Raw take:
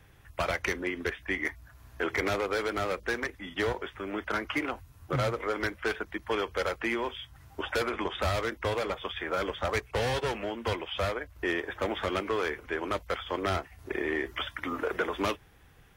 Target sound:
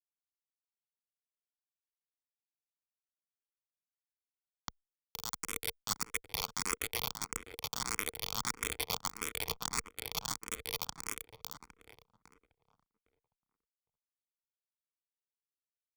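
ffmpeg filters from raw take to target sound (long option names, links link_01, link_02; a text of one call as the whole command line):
ffmpeg -i in.wav -filter_complex "[0:a]lowpass=frequency=3600:width=0.5412,lowpass=frequency=3600:width=1.3066,afftfilt=real='re*lt(hypot(re,im),0.0708)':imag='im*lt(hypot(re,im),0.0708)':win_size=1024:overlap=0.75,lowshelf=frequency=66:gain=5.5,areverse,acompressor=threshold=-47dB:ratio=12,areverse,anlmdn=0.0000631,aresample=16000,acrusher=bits=2:mode=log:mix=0:aa=0.000001,aresample=44100,dynaudnorm=framelen=350:gausssize=21:maxgain=16dB,acrusher=bits=3:mix=0:aa=0.000001,equalizer=frequency=460:width_type=o:width=0.29:gain=11.5,aecho=1:1:0.9:0.55,asplit=2[link_01][link_02];[link_02]adelay=809,lowpass=frequency=1400:poles=1,volume=-9.5dB,asplit=2[link_03][link_04];[link_04]adelay=809,lowpass=frequency=1400:poles=1,volume=0.19,asplit=2[link_05][link_06];[link_06]adelay=809,lowpass=frequency=1400:poles=1,volume=0.19[link_07];[link_01][link_03][link_05][link_07]amix=inputs=4:normalize=0,asplit=2[link_08][link_09];[link_09]afreqshift=1.6[link_10];[link_08][link_10]amix=inputs=2:normalize=1,volume=2.5dB" out.wav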